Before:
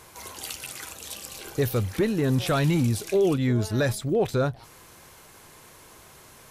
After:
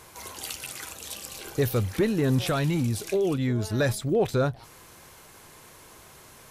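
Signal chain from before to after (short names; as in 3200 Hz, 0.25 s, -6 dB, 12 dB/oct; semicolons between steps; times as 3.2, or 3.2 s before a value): 2.41–3.8 compressor 2.5:1, threshold -23 dBFS, peak gain reduction 4 dB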